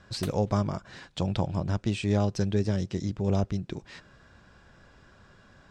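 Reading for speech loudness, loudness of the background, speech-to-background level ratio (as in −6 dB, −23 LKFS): −29.0 LKFS, −45.5 LKFS, 16.5 dB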